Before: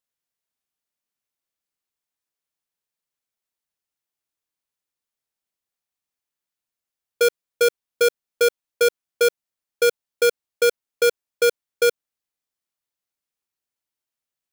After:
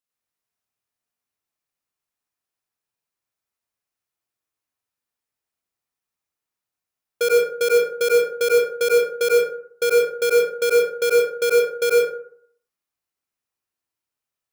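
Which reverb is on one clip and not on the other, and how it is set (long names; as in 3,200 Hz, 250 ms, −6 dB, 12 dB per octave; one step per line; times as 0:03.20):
dense smooth reverb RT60 0.61 s, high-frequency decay 0.4×, pre-delay 80 ms, DRR −5 dB
level −3.5 dB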